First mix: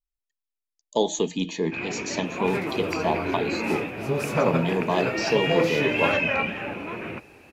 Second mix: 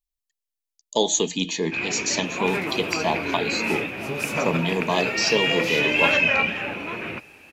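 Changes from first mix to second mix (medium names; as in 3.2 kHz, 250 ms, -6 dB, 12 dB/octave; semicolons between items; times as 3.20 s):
second sound -6.0 dB; master: add treble shelf 2.3 kHz +11 dB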